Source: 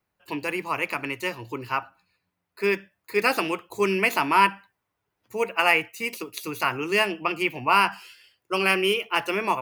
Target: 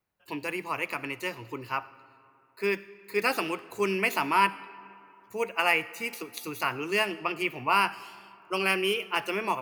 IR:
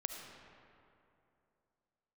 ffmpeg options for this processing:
-filter_complex "[0:a]asplit=2[s0][s1];[1:a]atrim=start_sample=2205,highshelf=f=4600:g=8[s2];[s1][s2]afir=irnorm=-1:irlink=0,volume=0.237[s3];[s0][s3]amix=inputs=2:normalize=0,volume=0.501"

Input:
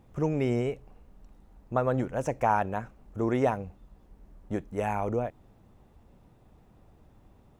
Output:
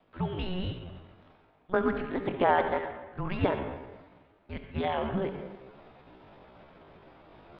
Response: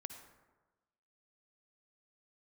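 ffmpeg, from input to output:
-filter_complex "[0:a]adynamicequalizer=threshold=0.0141:dfrequency=250:dqfactor=2.2:tfrequency=250:tqfactor=2.2:attack=5:release=100:ratio=0.375:range=1.5:mode=cutabove:tftype=bell,areverse,acompressor=mode=upward:threshold=0.0251:ratio=2.5,areverse,highpass=f=440:t=q:w=0.5412,highpass=f=440:t=q:w=1.307,lowpass=f=2800:t=q:w=0.5176,lowpass=f=2800:t=q:w=0.7071,lowpass=f=2800:t=q:w=1.932,afreqshift=-360[s0];[1:a]atrim=start_sample=2205[s1];[s0][s1]afir=irnorm=-1:irlink=0,asetrate=68011,aresample=44100,atempo=0.64842,volume=2"

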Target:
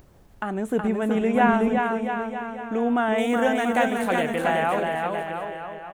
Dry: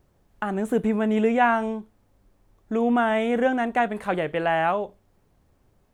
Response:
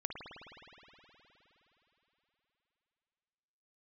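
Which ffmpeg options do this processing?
-filter_complex "[0:a]asettb=1/sr,asplit=3[s0][s1][s2];[s0]atrim=end=3.184[s3];[s1]atrim=start=3.18:end=4.36,asetpts=PTS-STARTPTS,afade=t=in:d=0.004:c=qsin,afade=t=out:st=1.176:d=0.004:c=qsin,aemphasis=mode=production:type=75kf[s4];[s2]atrim=start=4.356[s5];[s3][s4]acrossfade=d=0.004:c1=hsin:c2=qsin[s6];[s6][s5]acrossfade=d=0.004:c1=qsin:c2=hsin,aecho=1:1:370|684.5|951.8|1179|1372:0.631|0.398|0.251|0.158|0.1,acompressor=mode=upward:threshold=0.01:ratio=2.5,asettb=1/sr,asplit=3[s7][s8][s9];[s7]atrim=end=1.354[s10];[s8]atrim=start=1.35:end=1.78,asetpts=PTS-STARTPTS,afade=t=in:d=0.004:c=qsin,afade=t=out:st=0.426:d=0.004:c=qsin,lowshelf=f=220:g=9.5[s11];[s9]atrim=start=1.776[s12];[s10][s11]acrossfade=d=0.004:c1=hsin:c2=qsin[s13];[s13][s12]acrossfade=d=0.004:c1=qsin:c2=hsin,volume=0.841"

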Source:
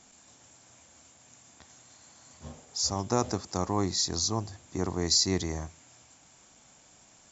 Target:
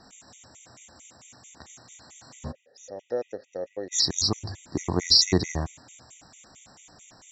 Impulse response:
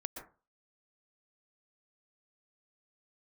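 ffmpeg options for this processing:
-filter_complex "[0:a]asplit=3[s0][s1][s2];[s0]afade=t=out:st=2.51:d=0.02[s3];[s1]asplit=3[s4][s5][s6];[s4]bandpass=f=530:t=q:w=8,volume=1[s7];[s5]bandpass=f=1840:t=q:w=8,volume=0.501[s8];[s6]bandpass=f=2480:t=q:w=8,volume=0.355[s9];[s7][s8][s9]amix=inputs=3:normalize=0,afade=t=in:st=2.51:d=0.02,afade=t=out:st=3.91:d=0.02[s10];[s2]afade=t=in:st=3.91:d=0.02[s11];[s3][s10][s11]amix=inputs=3:normalize=0,afftfilt=real='re*gt(sin(2*PI*4.5*pts/sr)*(1-2*mod(floor(b*sr/1024/1900),2)),0)':imag='im*gt(sin(2*PI*4.5*pts/sr)*(1-2*mod(floor(b*sr/1024/1900),2)),0)':win_size=1024:overlap=0.75,volume=2.66"

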